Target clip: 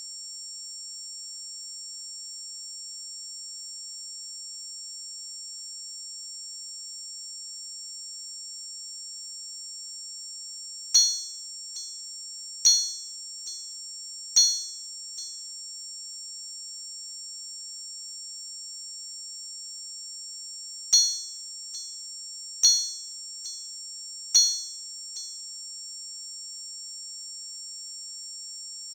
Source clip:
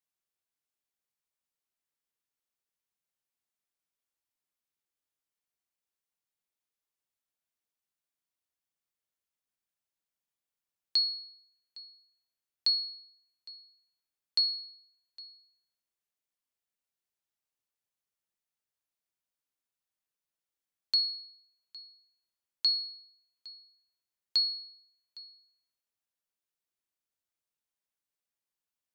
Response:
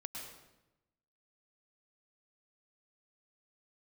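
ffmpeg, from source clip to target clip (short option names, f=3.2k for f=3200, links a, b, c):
-filter_complex "[0:a]aeval=exprs='val(0)+0.00562*sin(2*PI*5500*n/s)':c=same,asplit=4[a][b][c][d];[b]asetrate=35002,aresample=44100,atempo=1.25992,volume=-18dB[e];[c]asetrate=58866,aresample=44100,atempo=0.749154,volume=-1dB[f];[d]asetrate=66075,aresample=44100,atempo=0.66742,volume=-7dB[g];[a][e][f][g]amix=inputs=4:normalize=0,acrusher=bits=6:mode=log:mix=0:aa=0.000001,volume=5dB"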